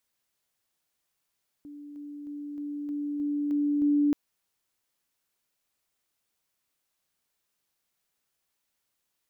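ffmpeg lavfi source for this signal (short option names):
-f lavfi -i "aevalsrc='pow(10,(-41+3*floor(t/0.31))/20)*sin(2*PI*291*t)':d=2.48:s=44100"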